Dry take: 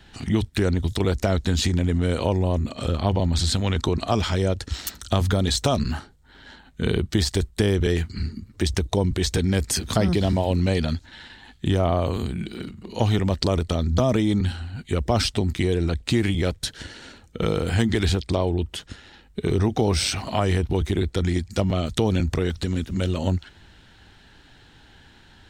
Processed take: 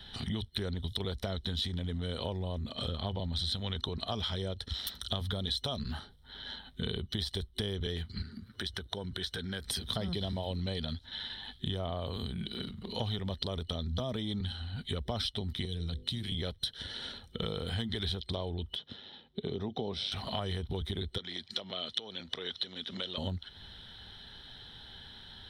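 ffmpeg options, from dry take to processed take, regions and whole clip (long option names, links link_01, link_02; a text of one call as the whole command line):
ffmpeg -i in.wav -filter_complex "[0:a]asettb=1/sr,asplit=3[link_01][link_02][link_03];[link_01]atrim=end=8.224[link_04];[link_02]atrim=start=8.22:end=9.66,asetpts=PTS-STARTPTS,afade=type=in:duration=0.004:curve=qsin,afade=type=out:start_time=1.436:duration=0.004:curve=qsin,highpass=frequency=140:poles=1,equalizer=frequency=1500:width=3.4:gain=12,acompressor=threshold=-41dB:ratio=1.5:attack=3.2:release=140:knee=1:detection=peak[link_05];[link_03]atrim=start=9.656[link_06];[link_04][link_05]acrossfade=duration=0.004:curve1=hsin:curve2=qsin[link_07];[link_07][link_06]acrossfade=duration=0.004:curve1=qsin:curve2=hsin,asettb=1/sr,asplit=3[link_08][link_09][link_10];[link_08]atrim=end=15.654[link_11];[link_09]atrim=start=15.65:end=16.32,asetpts=PTS-STARTPTS,afade=type=in:duration=0.004:curve=qsin,afade=type=out:start_time=0.666:duration=0.004:curve=qsin,bandreject=frequency=50:width_type=h:width=6,bandreject=frequency=100:width_type=h:width=6,bandreject=frequency=150:width_type=h:width=6,bandreject=frequency=200:width_type=h:width=6,bandreject=frequency=250:width_type=h:width=6,bandreject=frequency=300:width_type=h:width=6,bandreject=frequency=350:width_type=h:width=6,bandreject=frequency=400:width_type=h:width=6,bandreject=frequency=450:width_type=h:width=6,bandreject=frequency=500:width_type=h:width=6,acrossover=split=230|3000[link_12][link_13][link_14];[link_13]acompressor=threshold=-39dB:ratio=3:attack=3.2:release=140:knee=2.83:detection=peak[link_15];[link_12][link_15][link_14]amix=inputs=3:normalize=0[link_16];[link_10]atrim=start=16.316[link_17];[link_11][link_16]acrossfade=duration=0.004:curve1=hsin:curve2=qsin[link_18];[link_18][link_17]acrossfade=duration=0.004:curve1=qsin:curve2=hsin,asettb=1/sr,asplit=3[link_19][link_20][link_21];[link_19]atrim=end=18.754[link_22];[link_20]atrim=start=18.75:end=20.12,asetpts=PTS-STARTPTS,afade=type=in:duration=0.004:curve=qsin,afade=type=out:start_time=1.366:duration=0.004:curve=qsin,highpass=160,lowpass=3400,equalizer=frequency=1600:width=1:gain=-8[link_23];[link_21]atrim=start=20.116[link_24];[link_22][link_23]acrossfade=duration=0.004:curve1=hsin:curve2=qsin[link_25];[link_25][link_24]acrossfade=duration=0.004:curve1=qsin:curve2=hsin,asettb=1/sr,asplit=3[link_26][link_27][link_28];[link_26]atrim=end=21.184[link_29];[link_27]atrim=start=21.18:end=23.18,asetpts=PTS-STARTPTS,afade=type=in:duration=0.004:curve=qsin,afade=type=out:start_time=1.996:duration=0.004:curve=qsin,acompressor=threshold=-24dB:ratio=5:attack=3.2:release=140:knee=1:detection=peak,highpass=310,lowpass=3900,highshelf=frequency=2100:gain=10.5[link_30];[link_28]atrim=start=23.176[link_31];[link_29][link_30]acrossfade=duration=0.004:curve1=hsin:curve2=qsin[link_32];[link_32][link_31]acrossfade=duration=0.004:curve1=qsin:curve2=hsin,superequalizer=6b=0.501:12b=0.708:13b=3.55:15b=0.282,acompressor=threshold=-33dB:ratio=3,volume=-2.5dB" out.wav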